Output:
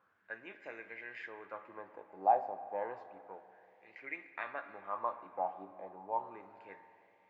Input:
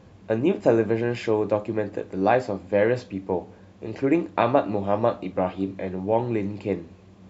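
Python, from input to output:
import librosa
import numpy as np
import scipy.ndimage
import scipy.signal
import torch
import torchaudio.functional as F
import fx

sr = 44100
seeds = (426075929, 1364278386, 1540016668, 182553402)

y = fx.wah_lfo(x, sr, hz=0.31, low_hz=780.0, high_hz=2100.0, q=6.7)
y = fx.rev_spring(y, sr, rt60_s=2.9, pass_ms=(47, 59), chirp_ms=20, drr_db=12.0)
y = y * 10.0 ** (-2.0 / 20.0)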